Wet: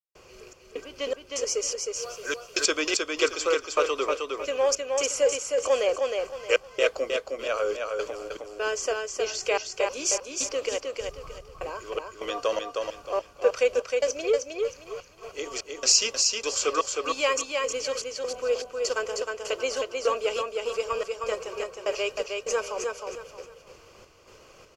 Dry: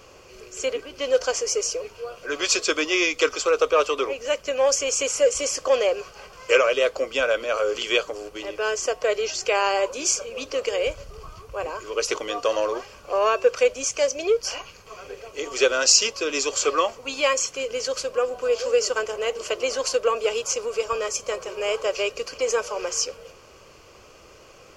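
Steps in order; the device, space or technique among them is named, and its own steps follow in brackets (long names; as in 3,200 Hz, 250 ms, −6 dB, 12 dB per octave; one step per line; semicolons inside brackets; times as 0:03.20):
0:01.86–0:02.66: high-shelf EQ 2,800 Hz +10.5 dB
trance gate with a delay (gate pattern "..xxxxx." 199 BPM −60 dB; repeating echo 312 ms, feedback 29%, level −4 dB)
level −3.5 dB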